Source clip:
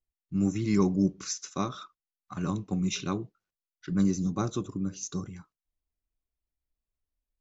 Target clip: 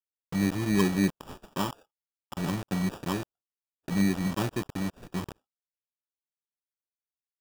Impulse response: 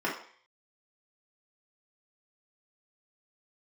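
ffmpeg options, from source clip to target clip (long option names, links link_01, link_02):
-filter_complex "[0:a]acrossover=split=2800[link_01][link_02];[link_01]acrusher=bits=5:mix=0:aa=0.000001[link_03];[link_03][link_02]amix=inputs=2:normalize=0,highshelf=frequency=2000:width_type=q:width=1.5:gain=-7.5,acrusher=samples=21:mix=1:aa=0.000001,agate=range=-17dB:threshold=-57dB:ratio=16:detection=peak"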